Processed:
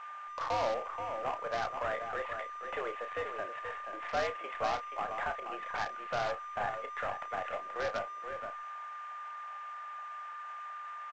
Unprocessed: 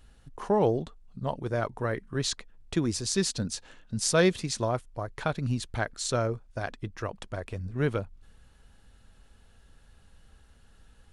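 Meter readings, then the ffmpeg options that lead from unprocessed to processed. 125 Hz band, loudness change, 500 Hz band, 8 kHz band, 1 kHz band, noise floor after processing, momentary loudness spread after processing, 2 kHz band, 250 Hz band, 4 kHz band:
-22.5 dB, -7.5 dB, -7.0 dB, -23.0 dB, +2.5 dB, -44 dBFS, 9 LU, -1.5 dB, -21.0 dB, -11.0 dB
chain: -filter_complex "[0:a]highpass=f=480:t=q:w=0.5412,highpass=f=480:t=q:w=1.307,lowpass=f=2400:t=q:w=0.5176,lowpass=f=2400:t=q:w=0.7071,lowpass=f=2400:t=q:w=1.932,afreqshift=100,acompressor=threshold=0.002:ratio=1.5,asplit=2[s0][s1];[s1]highpass=f=720:p=1,volume=14.1,asoftclip=type=tanh:threshold=0.0562[s2];[s0][s2]amix=inputs=2:normalize=0,lowpass=f=1500:p=1,volume=0.501,aeval=exprs='val(0)+0.00794*sin(2*PI*1200*n/s)':c=same,aresample=16000,acrusher=bits=2:mode=log:mix=0:aa=0.000001,aresample=44100,aeval=exprs='0.0708*(cos(1*acos(clip(val(0)/0.0708,-1,1)))-cos(1*PI/2))+0.002*(cos(7*acos(clip(val(0)/0.0708,-1,1)))-cos(7*PI/2))+0.00112*(cos(8*acos(clip(val(0)/0.0708,-1,1)))-cos(8*PI/2))':c=same,asplit=2[s3][s4];[s4]adelay=31,volume=0.355[s5];[s3][s5]amix=inputs=2:normalize=0,asplit=2[s6][s7];[s7]aecho=0:1:479:0.422[s8];[s6][s8]amix=inputs=2:normalize=0,afwtdn=0.00447"

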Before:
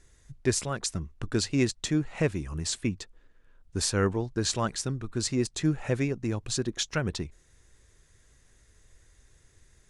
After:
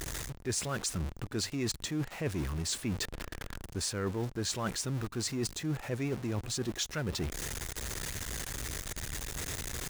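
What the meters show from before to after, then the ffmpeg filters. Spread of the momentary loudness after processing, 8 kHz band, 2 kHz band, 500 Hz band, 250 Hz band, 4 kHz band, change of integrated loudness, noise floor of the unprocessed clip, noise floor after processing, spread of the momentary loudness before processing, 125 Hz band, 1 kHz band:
5 LU, -2.0 dB, -3.0 dB, -6.5 dB, -6.0 dB, -2.5 dB, -5.5 dB, -62 dBFS, -51 dBFS, 7 LU, -4.5 dB, -4.0 dB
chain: -af "aeval=exprs='val(0)+0.5*0.0224*sgn(val(0))':c=same,highpass=f=44:p=1,areverse,acompressor=threshold=0.02:ratio=6,areverse,volume=1.33"

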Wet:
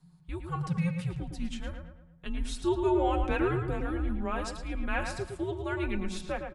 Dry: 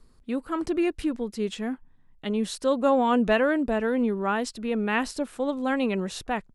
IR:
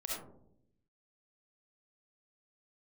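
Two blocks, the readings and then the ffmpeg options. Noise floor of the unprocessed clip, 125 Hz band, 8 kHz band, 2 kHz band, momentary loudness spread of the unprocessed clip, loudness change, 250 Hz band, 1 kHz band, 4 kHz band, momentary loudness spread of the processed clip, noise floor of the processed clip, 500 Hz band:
-57 dBFS, +7.0 dB, -6.0 dB, -6.5 dB, 10 LU, -6.0 dB, -7.5 dB, -6.5 dB, -7.0 dB, 14 LU, -57 dBFS, -7.0 dB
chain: -filter_complex "[0:a]aecho=1:1:5.5:0.53,bandreject=f=364.2:t=h:w=4,bandreject=f=728.4:t=h:w=4,bandreject=f=1092.6:t=h:w=4,bandreject=f=1456.8:t=h:w=4,bandreject=f=1821:t=h:w=4,bandreject=f=2185.2:t=h:w=4,bandreject=f=2549.4:t=h:w=4,bandreject=f=2913.6:t=h:w=4,bandreject=f=3277.8:t=h:w=4,bandreject=f=3642:t=h:w=4,bandreject=f=4006.2:t=h:w=4,bandreject=f=4370.4:t=h:w=4,bandreject=f=4734.6:t=h:w=4,bandreject=f=5098.8:t=h:w=4,bandreject=f=5463:t=h:w=4,bandreject=f=5827.2:t=h:w=4,bandreject=f=6191.4:t=h:w=4,bandreject=f=6555.6:t=h:w=4,bandreject=f=6919.8:t=h:w=4,bandreject=f=7284:t=h:w=4,bandreject=f=7648.2:t=h:w=4,bandreject=f=8012.4:t=h:w=4,bandreject=f=8376.6:t=h:w=4,bandreject=f=8740.8:t=h:w=4,bandreject=f=9105:t=h:w=4,bandreject=f=9469.2:t=h:w=4,bandreject=f=9833.4:t=h:w=4,bandreject=f=10197.6:t=h:w=4,bandreject=f=10561.8:t=h:w=4,bandreject=f=10926:t=h:w=4,bandreject=f=11290.2:t=h:w=4,bandreject=f=11654.4:t=h:w=4,bandreject=f=12018.6:t=h:w=4,bandreject=f=12382.8:t=h:w=4,bandreject=f=12747:t=h:w=4,bandreject=f=13111.2:t=h:w=4,afreqshift=-180,asplit=2[s0][s1];[s1]adelay=111,lowpass=f=2900:p=1,volume=0.531,asplit=2[s2][s3];[s3]adelay=111,lowpass=f=2900:p=1,volume=0.45,asplit=2[s4][s5];[s5]adelay=111,lowpass=f=2900:p=1,volume=0.45,asplit=2[s6][s7];[s7]adelay=111,lowpass=f=2900:p=1,volume=0.45,asplit=2[s8][s9];[s9]adelay=111,lowpass=f=2900:p=1,volume=0.45[s10];[s2][s4][s6][s8][s10]amix=inputs=5:normalize=0[s11];[s0][s11]amix=inputs=2:normalize=0,volume=0.447"

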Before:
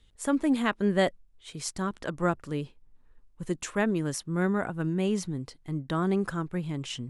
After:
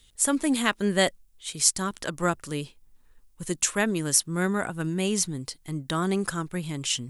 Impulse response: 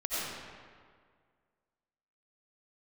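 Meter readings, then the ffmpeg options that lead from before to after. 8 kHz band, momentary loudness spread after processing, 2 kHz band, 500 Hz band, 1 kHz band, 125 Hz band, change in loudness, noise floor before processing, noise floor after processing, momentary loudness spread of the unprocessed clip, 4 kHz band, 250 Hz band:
+15.0 dB, 12 LU, +4.5 dB, +0.5 dB, +2.0 dB, 0.0 dB, +3.5 dB, -60 dBFS, -60 dBFS, 10 LU, +9.5 dB, 0.0 dB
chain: -af "crystalizer=i=5:c=0"

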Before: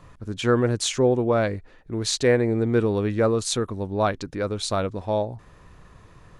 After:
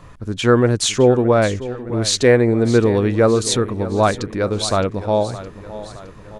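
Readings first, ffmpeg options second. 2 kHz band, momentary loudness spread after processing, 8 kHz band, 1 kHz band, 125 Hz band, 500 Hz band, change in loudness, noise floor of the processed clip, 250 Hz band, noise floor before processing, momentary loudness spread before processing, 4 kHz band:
+6.5 dB, 16 LU, +6.5 dB, +6.5 dB, +6.5 dB, +6.5 dB, +6.5 dB, -40 dBFS, +6.5 dB, -52 dBFS, 9 LU, +6.5 dB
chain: -af "aecho=1:1:615|1230|1845|2460|3075:0.178|0.0942|0.05|0.0265|0.014,volume=2.11"

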